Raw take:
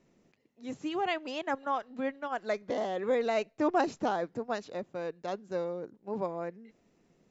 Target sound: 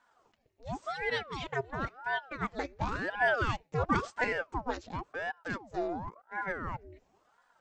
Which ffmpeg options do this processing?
ffmpeg -i in.wav -af "aecho=1:1:4.1:0.6,atempo=0.96,aeval=exprs='val(0)*sin(2*PI*690*n/s+690*0.8/0.94*sin(2*PI*0.94*n/s))':channel_layout=same" out.wav

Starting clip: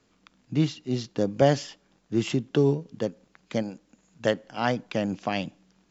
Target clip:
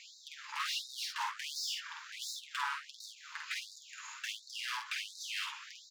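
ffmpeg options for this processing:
ffmpeg -i in.wav -filter_complex "[0:a]lowshelf=frequency=88:gain=8.5,bandreject=frequency=60:width_type=h:width=6,bandreject=frequency=120:width_type=h:width=6,bandreject=frequency=180:width_type=h:width=6,asplit=2[link_01][link_02];[link_02]alimiter=limit=-17dB:level=0:latency=1,volume=2dB[link_03];[link_01][link_03]amix=inputs=2:normalize=0,acrossover=split=350|3000[link_04][link_05][link_06];[link_05]acompressor=threshold=-32dB:ratio=6[link_07];[link_04][link_07][link_06]amix=inputs=3:normalize=0,aeval=exprs='0.1*(abs(mod(val(0)/0.1+3,4)-2)-1)':channel_layout=same,flanger=delay=5.9:depth=1.9:regen=-34:speed=0.57:shape=triangular,asplit=2[link_08][link_09];[link_09]highpass=frequency=720:poles=1,volume=34dB,asoftclip=type=tanh:threshold=-20dB[link_10];[link_08][link_10]amix=inputs=2:normalize=0,lowpass=frequency=1800:poles=1,volume=-6dB,asoftclip=type=tanh:threshold=-23.5dB,aecho=1:1:49|67:0.631|0.266,afftfilt=real='re*gte(b*sr/1024,820*pow(3700/820,0.5+0.5*sin(2*PI*1.4*pts/sr)))':imag='im*gte(b*sr/1024,820*pow(3700/820,0.5+0.5*sin(2*PI*1.4*pts/sr)))':win_size=1024:overlap=0.75,volume=-3dB" out.wav

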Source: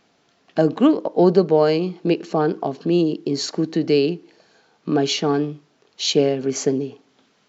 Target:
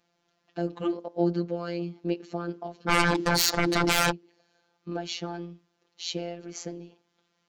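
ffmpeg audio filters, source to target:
ffmpeg -i in.wav -filter_complex "[0:a]asplit=3[link_01][link_02][link_03];[link_01]afade=type=out:start_time=2.87:duration=0.02[link_04];[link_02]aeval=exprs='0.422*sin(PI/2*7.94*val(0)/0.422)':channel_layout=same,afade=type=in:start_time=2.87:duration=0.02,afade=type=out:start_time=4.1:duration=0.02[link_05];[link_03]afade=type=in:start_time=4.1:duration=0.02[link_06];[link_04][link_05][link_06]amix=inputs=3:normalize=0,afftfilt=real='hypot(re,im)*cos(PI*b)':imag='0':win_size=1024:overlap=0.75,volume=-9dB" out.wav

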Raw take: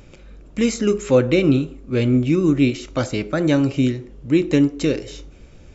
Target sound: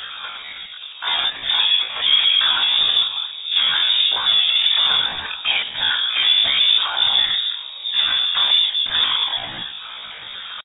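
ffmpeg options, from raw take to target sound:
ffmpeg -i in.wav -filter_complex "[0:a]afftfilt=real='re*pow(10,7/40*sin(2*PI*(0.98*log(max(b,1)*sr/1024/100)/log(2)-(2.5)*(pts-256)/sr)))':imag='im*pow(10,7/40*sin(2*PI*(0.98*log(max(b,1)*sr/1024/100)/log(2)-(2.5)*(pts-256)/sr)))':win_size=1024:overlap=0.75,highshelf=frequency=2400:gain=10.5,bandreject=frequency=60:width_type=h:width=6,bandreject=frequency=120:width_type=h:width=6,bandreject=frequency=180:width_type=h:width=6,bandreject=frequency=240:width_type=h:width=6,areverse,acompressor=mode=upward:threshold=-38dB:ratio=2.5,areverse,asplit=2[link_01][link_02];[link_02]highpass=frequency=720:poles=1,volume=37dB,asoftclip=type=tanh:threshold=-1dB[link_03];[link_01][link_03]amix=inputs=2:normalize=0,lowpass=frequency=1500:poles=1,volume=-6dB,afftfilt=real='hypot(re,im)*cos(2*PI*random(0))':imag='hypot(re,im)*sin(2*PI*random(1))':win_size=512:overlap=0.75,atempo=0.54,asplit=2[link_04][link_05];[link_05]adelay=380,lowpass=frequency=1300:poles=1,volume=-23.5dB,asplit=2[link_06][link_07];[link_07]adelay=380,lowpass=frequency=1300:poles=1,volume=0.51,asplit=2[link_08][link_09];[link_09]adelay=380,lowpass=frequency=1300:poles=1,volume=0.51[link_10];[link_06][link_08][link_10]amix=inputs=3:normalize=0[link_11];[link_04][link_11]amix=inputs=2:normalize=0,lowpass=frequency=3200:width_type=q:width=0.5098,lowpass=frequency=3200:width_type=q:width=0.6013,lowpass=frequency=3200:width_type=q:width=0.9,lowpass=frequency=3200:width_type=q:width=2.563,afreqshift=-3800,volume=-2dB" out.wav

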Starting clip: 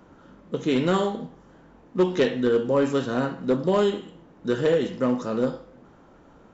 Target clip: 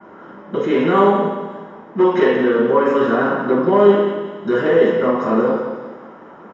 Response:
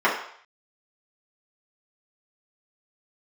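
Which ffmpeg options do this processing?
-filter_complex "[0:a]highpass=60,alimiter=limit=-19dB:level=0:latency=1:release=16,aecho=1:1:178|356|534|712|890:0.398|0.159|0.0637|0.0255|0.0102[link_01];[1:a]atrim=start_sample=2205[link_02];[link_01][link_02]afir=irnorm=-1:irlink=0,adynamicequalizer=threshold=0.0316:dfrequency=2900:dqfactor=0.7:tfrequency=2900:tqfactor=0.7:attack=5:release=100:ratio=0.375:range=2.5:mode=cutabove:tftype=highshelf,volume=-6dB"

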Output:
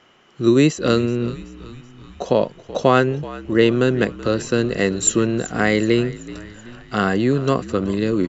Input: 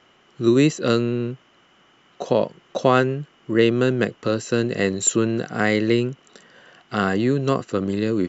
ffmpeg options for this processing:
ffmpeg -i in.wav -filter_complex "[0:a]asplit=6[link_01][link_02][link_03][link_04][link_05][link_06];[link_02]adelay=379,afreqshift=-56,volume=-17.5dB[link_07];[link_03]adelay=758,afreqshift=-112,volume=-22.9dB[link_08];[link_04]adelay=1137,afreqshift=-168,volume=-28.2dB[link_09];[link_05]adelay=1516,afreqshift=-224,volume=-33.6dB[link_10];[link_06]adelay=1895,afreqshift=-280,volume=-38.9dB[link_11];[link_01][link_07][link_08][link_09][link_10][link_11]amix=inputs=6:normalize=0,volume=2dB" out.wav

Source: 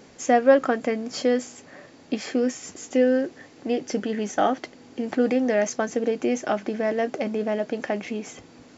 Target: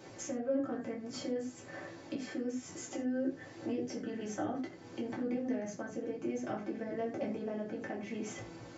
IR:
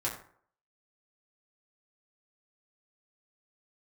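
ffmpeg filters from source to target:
-filter_complex "[0:a]acrossover=split=320[link_01][link_02];[link_02]acompressor=threshold=-40dB:ratio=4[link_03];[link_01][link_03]amix=inputs=2:normalize=0,alimiter=limit=-23.5dB:level=0:latency=1:release=347[link_04];[1:a]atrim=start_sample=2205,afade=type=out:start_time=0.16:duration=0.01,atrim=end_sample=7497[link_05];[link_04][link_05]afir=irnorm=-1:irlink=0,volume=-5dB"

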